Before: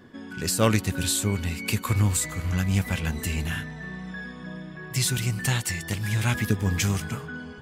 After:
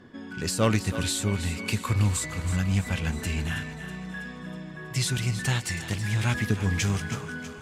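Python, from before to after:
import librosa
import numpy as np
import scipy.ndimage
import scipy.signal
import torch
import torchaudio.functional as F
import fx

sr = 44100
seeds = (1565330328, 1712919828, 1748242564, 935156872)

p1 = fx.high_shelf(x, sr, hz=9800.0, db=10.0)
p2 = 10.0 ** (-19.5 / 20.0) * np.tanh(p1 / 10.0 ** (-19.5 / 20.0))
p3 = p1 + (p2 * 10.0 ** (-5.0 / 20.0))
p4 = fx.air_absorb(p3, sr, metres=66.0)
p5 = fx.echo_thinned(p4, sr, ms=323, feedback_pct=57, hz=420.0, wet_db=-11.5)
p6 = fx.end_taper(p5, sr, db_per_s=360.0)
y = p6 * 10.0 ** (-4.0 / 20.0)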